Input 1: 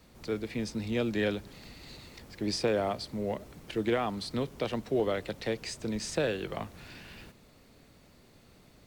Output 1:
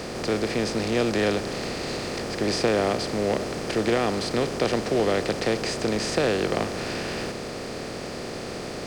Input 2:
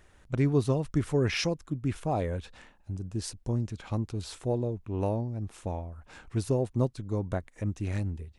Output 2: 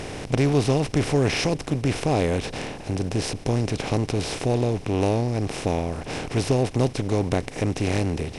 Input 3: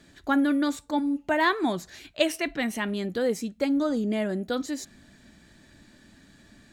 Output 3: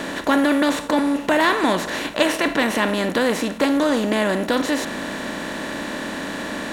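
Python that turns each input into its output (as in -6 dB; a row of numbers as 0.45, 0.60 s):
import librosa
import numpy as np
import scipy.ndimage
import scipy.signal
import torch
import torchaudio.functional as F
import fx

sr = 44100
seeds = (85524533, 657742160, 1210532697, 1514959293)

y = fx.bin_compress(x, sr, power=0.4)
y = y * 10.0 ** (2.0 / 20.0)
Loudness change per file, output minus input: +7.0, +7.0, +6.0 LU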